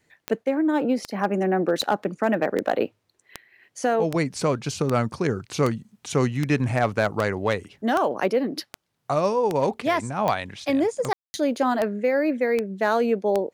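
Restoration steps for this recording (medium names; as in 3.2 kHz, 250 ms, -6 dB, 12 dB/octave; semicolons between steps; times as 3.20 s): clip repair -11.5 dBFS; de-click; room tone fill 11.13–11.34 s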